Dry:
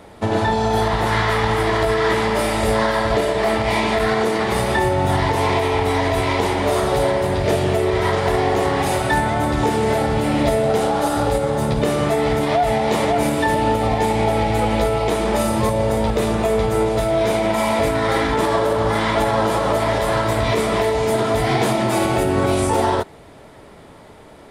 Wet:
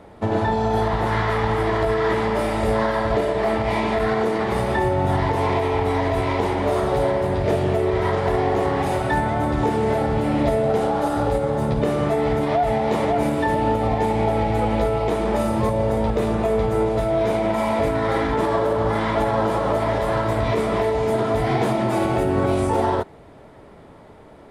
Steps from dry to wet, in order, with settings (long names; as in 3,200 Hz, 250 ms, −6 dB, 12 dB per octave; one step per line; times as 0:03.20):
high-shelf EQ 2,500 Hz −10.5 dB
level −1.5 dB